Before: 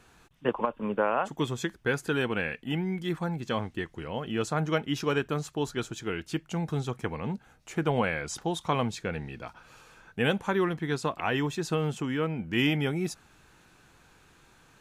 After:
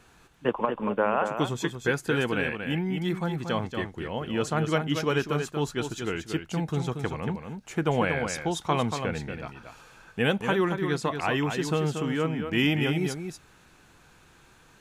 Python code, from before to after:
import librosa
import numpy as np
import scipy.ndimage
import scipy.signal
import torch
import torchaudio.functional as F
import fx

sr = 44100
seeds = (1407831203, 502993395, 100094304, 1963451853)

y = x + 10.0 ** (-7.0 / 20.0) * np.pad(x, (int(233 * sr / 1000.0), 0))[:len(x)]
y = F.gain(torch.from_numpy(y), 1.5).numpy()